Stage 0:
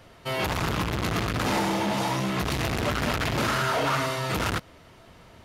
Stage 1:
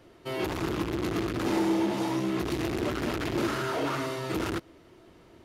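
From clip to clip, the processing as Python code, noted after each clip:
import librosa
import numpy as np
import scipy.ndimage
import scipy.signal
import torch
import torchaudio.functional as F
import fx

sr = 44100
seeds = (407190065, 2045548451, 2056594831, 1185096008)

y = fx.peak_eq(x, sr, hz=340.0, db=14.5, octaves=0.63)
y = y * 10.0 ** (-7.5 / 20.0)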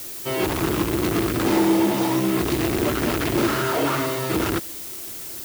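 y = fx.dmg_noise_colour(x, sr, seeds[0], colour='blue', level_db=-42.0)
y = y * 10.0 ** (7.5 / 20.0)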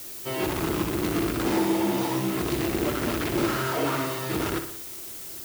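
y = fx.echo_feedback(x, sr, ms=60, feedback_pct=54, wet_db=-9)
y = y * 10.0 ** (-5.0 / 20.0)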